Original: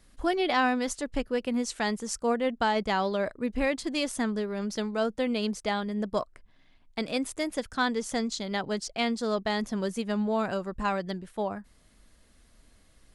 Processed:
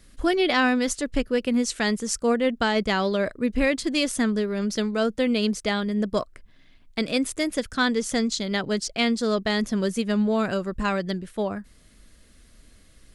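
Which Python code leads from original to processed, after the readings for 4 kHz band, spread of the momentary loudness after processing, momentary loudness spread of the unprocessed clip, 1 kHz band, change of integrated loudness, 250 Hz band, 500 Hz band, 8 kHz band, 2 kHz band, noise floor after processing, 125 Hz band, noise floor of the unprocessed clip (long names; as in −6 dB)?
+6.5 dB, 5 LU, 6 LU, +0.5 dB, +5.0 dB, +6.0 dB, +4.5 dB, +6.5 dB, +5.5 dB, −54 dBFS, +6.5 dB, −60 dBFS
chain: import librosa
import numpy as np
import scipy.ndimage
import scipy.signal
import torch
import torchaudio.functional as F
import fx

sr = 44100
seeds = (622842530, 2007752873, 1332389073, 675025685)

y = fx.peak_eq(x, sr, hz=850.0, db=-8.0, octaves=0.78)
y = y * librosa.db_to_amplitude(6.5)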